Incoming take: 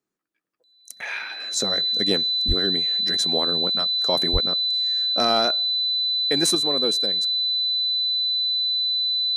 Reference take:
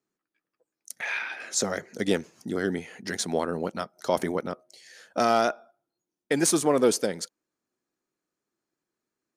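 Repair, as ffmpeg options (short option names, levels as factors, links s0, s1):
-filter_complex "[0:a]bandreject=f=4000:w=30,asplit=3[s0][s1][s2];[s0]afade=t=out:st=2.47:d=0.02[s3];[s1]highpass=f=140:w=0.5412,highpass=f=140:w=1.3066,afade=t=in:st=2.47:d=0.02,afade=t=out:st=2.59:d=0.02[s4];[s2]afade=t=in:st=2.59:d=0.02[s5];[s3][s4][s5]amix=inputs=3:normalize=0,asplit=3[s6][s7][s8];[s6]afade=t=out:st=4.32:d=0.02[s9];[s7]highpass=f=140:w=0.5412,highpass=f=140:w=1.3066,afade=t=in:st=4.32:d=0.02,afade=t=out:st=4.44:d=0.02[s10];[s8]afade=t=in:st=4.44:d=0.02[s11];[s9][s10][s11]amix=inputs=3:normalize=0,asetnsamples=n=441:p=0,asendcmd='6.55 volume volume 5.5dB',volume=1"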